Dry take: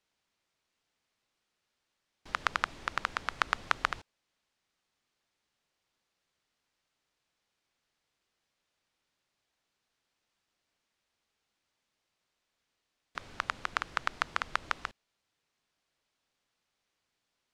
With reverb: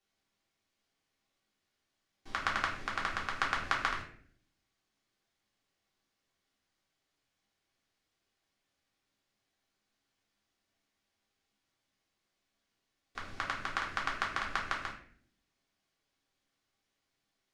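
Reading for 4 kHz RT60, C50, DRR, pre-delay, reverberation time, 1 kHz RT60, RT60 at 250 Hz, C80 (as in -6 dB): 0.40 s, 6.5 dB, -3.5 dB, 3 ms, 0.55 s, 0.45 s, 0.95 s, 10.0 dB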